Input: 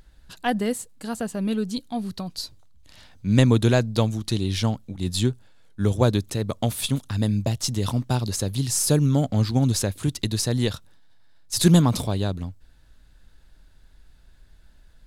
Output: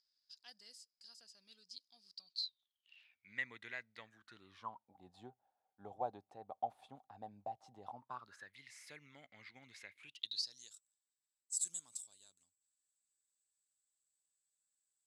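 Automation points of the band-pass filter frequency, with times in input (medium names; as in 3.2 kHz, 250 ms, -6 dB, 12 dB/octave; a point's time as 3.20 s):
band-pass filter, Q 17
2.15 s 5 kHz
3.36 s 2 kHz
3.96 s 2 kHz
4.99 s 770 Hz
7.91 s 770 Hz
8.56 s 2.1 kHz
9.96 s 2.1 kHz
10.73 s 7.8 kHz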